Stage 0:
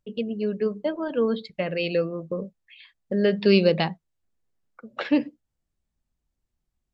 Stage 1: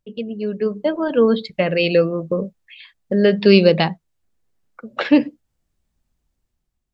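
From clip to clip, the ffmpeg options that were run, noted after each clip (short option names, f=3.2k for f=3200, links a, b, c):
-af "dynaudnorm=f=220:g=7:m=8dB,volume=1dB"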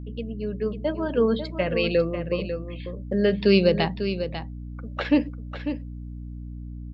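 -af "aecho=1:1:546:0.335,aeval=exprs='val(0)+0.0398*(sin(2*PI*60*n/s)+sin(2*PI*2*60*n/s)/2+sin(2*PI*3*60*n/s)/3+sin(2*PI*4*60*n/s)/4+sin(2*PI*5*60*n/s)/5)':c=same,volume=-6.5dB"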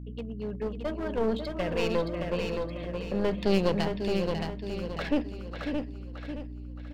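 -filter_complex "[0:a]aeval=exprs='clip(val(0),-1,0.0447)':c=same,asplit=2[a][b];[b]aecho=0:1:620|1240|1860|2480|3100:0.562|0.208|0.077|0.0285|0.0105[c];[a][c]amix=inputs=2:normalize=0,volume=-4.5dB"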